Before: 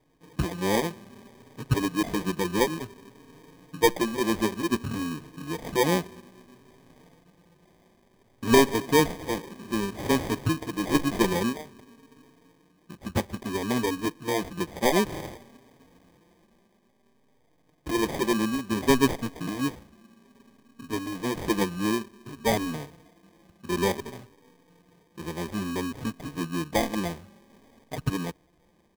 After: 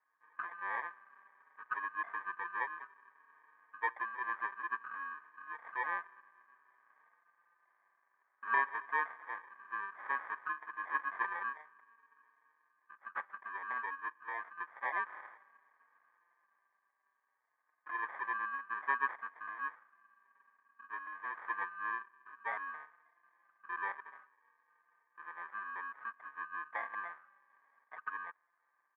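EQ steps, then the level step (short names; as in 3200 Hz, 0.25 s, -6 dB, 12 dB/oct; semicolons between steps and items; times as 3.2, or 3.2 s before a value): Butterworth band-pass 1400 Hz, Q 2.5; air absorption 380 m; +5.0 dB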